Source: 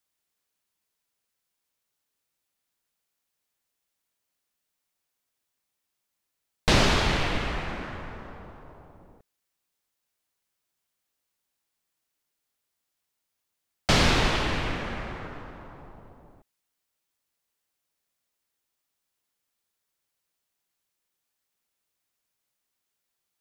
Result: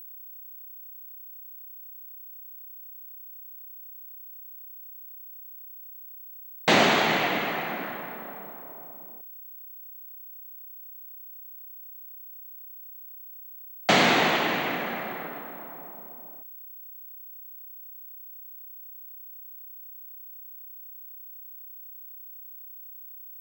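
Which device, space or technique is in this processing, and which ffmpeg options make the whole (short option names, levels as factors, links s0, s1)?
old television with a line whistle: -af "highpass=f=180:w=0.5412,highpass=f=180:w=1.3066,equalizer=f=720:t=q:w=4:g=6,equalizer=f=2000:t=q:w=4:g=4,equalizer=f=5200:t=q:w=4:g=-9,lowpass=f=7400:w=0.5412,lowpass=f=7400:w=1.3066,aeval=exprs='val(0)+0.00708*sin(2*PI*15734*n/s)':c=same,volume=1.26"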